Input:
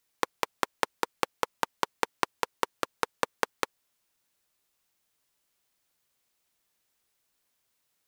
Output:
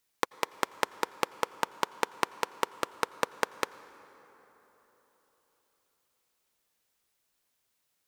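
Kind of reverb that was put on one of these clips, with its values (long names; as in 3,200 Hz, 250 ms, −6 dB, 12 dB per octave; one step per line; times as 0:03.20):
dense smooth reverb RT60 4.2 s, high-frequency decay 0.5×, pre-delay 75 ms, DRR 17.5 dB
level −1 dB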